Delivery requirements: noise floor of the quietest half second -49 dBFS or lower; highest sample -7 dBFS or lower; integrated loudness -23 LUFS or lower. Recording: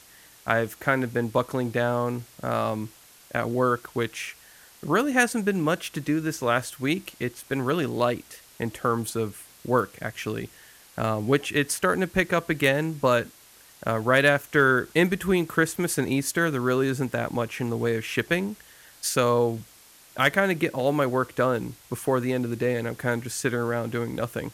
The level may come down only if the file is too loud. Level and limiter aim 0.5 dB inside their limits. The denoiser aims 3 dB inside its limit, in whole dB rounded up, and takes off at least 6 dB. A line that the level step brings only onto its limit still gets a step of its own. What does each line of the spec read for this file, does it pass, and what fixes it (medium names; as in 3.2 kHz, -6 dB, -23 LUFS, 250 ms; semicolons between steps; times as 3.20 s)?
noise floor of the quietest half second -53 dBFS: pass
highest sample -5.5 dBFS: fail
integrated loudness -25.5 LUFS: pass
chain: peak limiter -7.5 dBFS